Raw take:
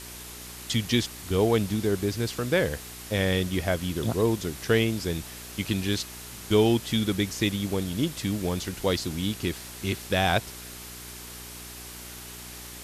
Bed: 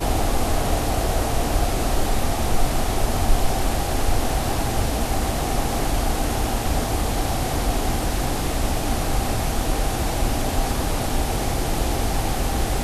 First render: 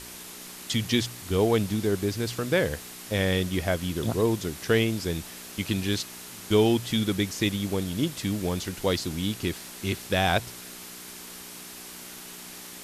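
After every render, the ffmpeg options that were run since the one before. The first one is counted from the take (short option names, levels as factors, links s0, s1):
-af "bandreject=f=60:t=h:w=4,bandreject=f=120:t=h:w=4"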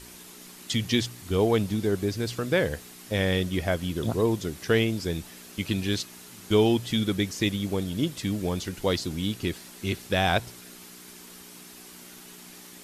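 -af "afftdn=nr=6:nf=-43"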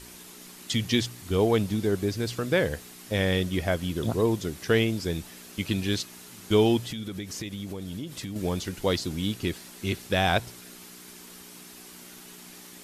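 -filter_complex "[0:a]asettb=1/sr,asplit=3[s0][s1][s2];[s0]atrim=end=6.814[s3];[s1]atrim=start=6.81:end=8.36,asetpts=PTS-STARTPTS,afade=t=in:d=0.004:c=qsin,afade=t=out:st=1.546:d=0.004:c=qsin,acompressor=threshold=0.0282:ratio=8:attack=3.2:release=140:knee=1:detection=peak[s4];[s2]atrim=start=8.356[s5];[s3][s4]acrossfade=d=0.004:c1=hsin:c2=qsin[s6];[s6][s5]acrossfade=d=0.004:c1=qsin:c2=hsin"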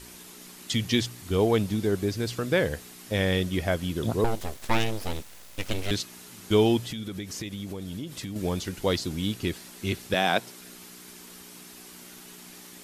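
-filter_complex "[0:a]asettb=1/sr,asplit=3[s0][s1][s2];[s0]atrim=end=4.244[s3];[s1]atrim=start=4.24:end=5.91,asetpts=PTS-STARTPTS,afade=t=in:d=0.004:c=qsin,afade=t=out:st=1.666:d=0.004:c=qsin,aeval=exprs='abs(val(0))':c=same[s4];[s2]atrim=start=5.906[s5];[s3][s4]acrossfade=d=0.004:c1=hsin:c2=qsin[s6];[s6][s5]acrossfade=d=0.004:c1=qsin:c2=hsin,asettb=1/sr,asplit=3[s7][s8][s9];[s7]atrim=end=10.144[s10];[s8]atrim=start=10.14:end=10.61,asetpts=PTS-STARTPTS,afade=t=in:d=0.004:c=qsin,afade=t=out:st=0.466:d=0.004:c=qsin,highpass=f=170:w=0.5412,highpass=f=170:w=1.3066[s11];[s9]atrim=start=10.606[s12];[s10][s11]acrossfade=d=0.004:c1=hsin:c2=qsin[s13];[s13][s12]acrossfade=d=0.004:c1=qsin:c2=hsin"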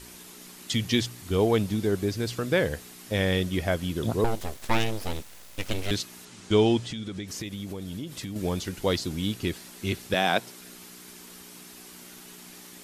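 -filter_complex "[0:a]asettb=1/sr,asplit=3[s0][s1][s2];[s0]atrim=end=6.254[s3];[s1]atrim=start=6.25:end=7.28,asetpts=PTS-STARTPTS,afade=t=in:d=0.004:c=qsin,afade=t=out:st=1.026:d=0.004:c=qsin,lowpass=f=8500:w=0.5412,lowpass=f=8500:w=1.3066[s4];[s2]atrim=start=7.276[s5];[s3][s4]acrossfade=d=0.004:c1=hsin:c2=qsin[s6];[s6][s5]acrossfade=d=0.004:c1=qsin:c2=hsin"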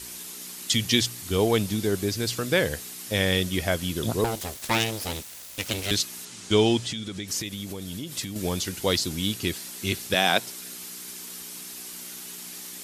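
-af "highpass=49,highshelf=f=2800:g=10"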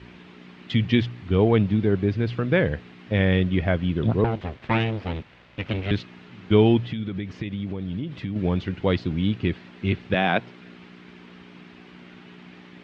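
-af "lowpass=f=2700:w=0.5412,lowpass=f=2700:w=1.3066,equalizer=f=130:w=0.54:g=8"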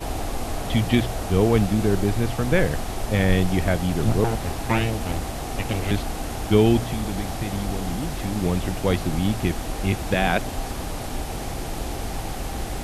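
-filter_complex "[1:a]volume=0.447[s0];[0:a][s0]amix=inputs=2:normalize=0"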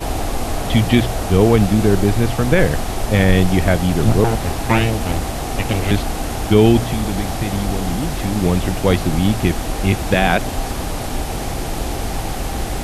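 -af "volume=2.11,alimiter=limit=0.794:level=0:latency=1"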